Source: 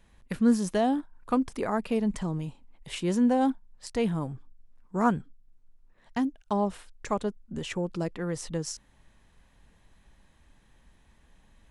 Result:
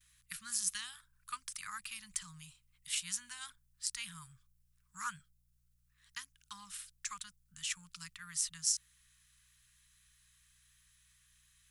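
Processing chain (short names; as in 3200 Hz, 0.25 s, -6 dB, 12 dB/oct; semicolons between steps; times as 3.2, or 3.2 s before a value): gate with hold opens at -56 dBFS; pre-emphasis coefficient 0.97; hum 60 Hz, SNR 32 dB; elliptic band-stop 160–1200 Hz, stop band 40 dB; gain +7 dB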